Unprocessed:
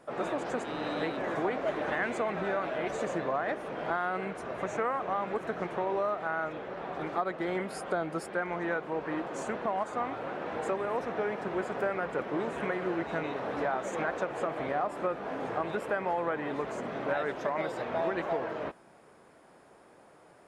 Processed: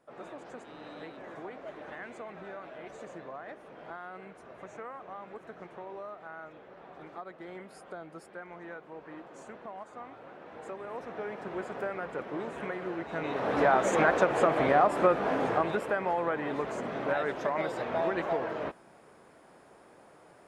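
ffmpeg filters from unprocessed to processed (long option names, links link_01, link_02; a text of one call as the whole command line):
ffmpeg -i in.wav -af "volume=8dB,afade=type=in:start_time=10.5:duration=1.07:silence=0.398107,afade=type=in:start_time=13.11:duration=0.64:silence=0.251189,afade=type=out:start_time=15.23:duration=0.63:silence=0.446684" out.wav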